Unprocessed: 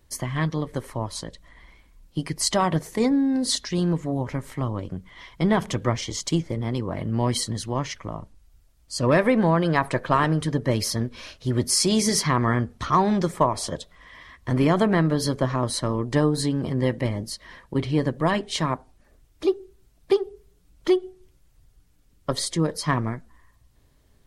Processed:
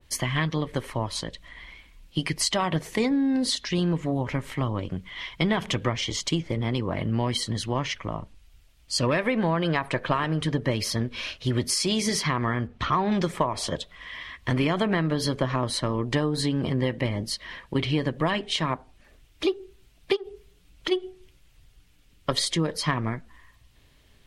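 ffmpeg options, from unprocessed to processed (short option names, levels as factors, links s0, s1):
-filter_complex "[0:a]asettb=1/sr,asplit=3[s0][s1][s2];[s0]atrim=end=12.674[s3];[s1]atrim=start=12.67:end=13.12,asetpts=PTS-STARTPTS,afade=t=in:d=0.004:c=qsin,afade=t=out:st=0.446:d=0.004:c=qsin,aemphasis=mode=reproduction:type=75kf[s4];[s2]atrim=start=13.116[s5];[s3][s4]acrossfade=d=0.004:c1=hsin:c2=qsin[s6];[s6][s5]acrossfade=d=0.004:c1=qsin:c2=hsin,asplit=3[s7][s8][s9];[s7]afade=t=out:st=20.15:d=0.02[s10];[s8]acompressor=threshold=0.0316:ratio=6:attack=3.2:release=140:knee=1:detection=peak,afade=t=in:st=20.15:d=0.02,afade=t=out:st=20.91:d=0.02[s11];[s9]afade=t=in:st=20.91:d=0.02[s12];[s10][s11][s12]amix=inputs=3:normalize=0,equalizer=f=2800:w=1:g=11.5,acompressor=threshold=0.0891:ratio=6,adynamicequalizer=threshold=0.00891:dfrequency=1600:dqfactor=0.7:tfrequency=1600:tqfactor=0.7:attack=5:release=100:ratio=0.375:range=2.5:mode=cutabove:tftype=highshelf,volume=1.12"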